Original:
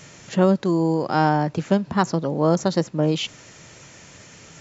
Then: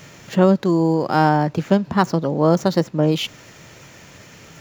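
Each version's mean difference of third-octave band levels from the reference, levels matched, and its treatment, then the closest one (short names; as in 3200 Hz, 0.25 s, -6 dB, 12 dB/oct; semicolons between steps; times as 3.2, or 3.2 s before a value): 1.5 dB: median filter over 5 samples; gain +3 dB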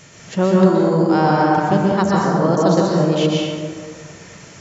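6.0 dB: plate-style reverb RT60 2 s, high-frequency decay 0.45×, pre-delay 0.11 s, DRR -4 dB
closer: first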